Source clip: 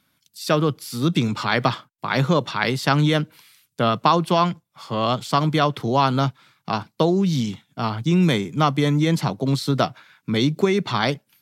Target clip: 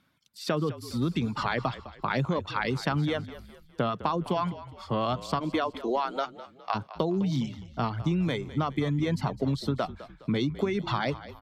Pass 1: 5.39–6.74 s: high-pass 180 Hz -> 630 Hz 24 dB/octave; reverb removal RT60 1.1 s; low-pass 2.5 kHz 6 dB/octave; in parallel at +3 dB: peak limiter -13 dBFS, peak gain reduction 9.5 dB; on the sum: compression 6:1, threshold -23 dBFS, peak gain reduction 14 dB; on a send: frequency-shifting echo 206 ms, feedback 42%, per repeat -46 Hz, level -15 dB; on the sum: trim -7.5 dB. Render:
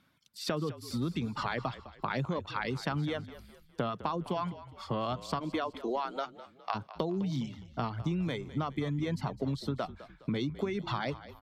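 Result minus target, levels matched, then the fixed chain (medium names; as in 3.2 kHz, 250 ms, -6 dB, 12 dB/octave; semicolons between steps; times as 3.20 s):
compression: peak gain reduction +5.5 dB
5.39–6.74 s: high-pass 180 Hz -> 630 Hz 24 dB/octave; reverb removal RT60 1.1 s; low-pass 2.5 kHz 6 dB/octave; in parallel at +3 dB: peak limiter -13 dBFS, peak gain reduction 9.5 dB; on the sum: compression 6:1, threshold -16.5 dBFS, peak gain reduction 8.5 dB; on a send: frequency-shifting echo 206 ms, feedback 42%, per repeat -46 Hz, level -15 dB; on the sum: trim -7.5 dB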